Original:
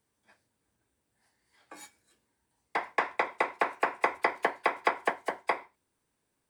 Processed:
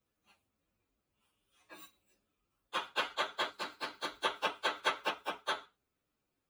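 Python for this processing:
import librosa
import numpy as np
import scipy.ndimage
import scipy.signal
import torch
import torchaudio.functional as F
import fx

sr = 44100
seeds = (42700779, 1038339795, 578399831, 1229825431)

y = fx.partial_stretch(x, sr, pct=124)
y = fx.spec_box(y, sr, start_s=3.5, length_s=0.74, low_hz=380.0, high_hz=3800.0, gain_db=-7)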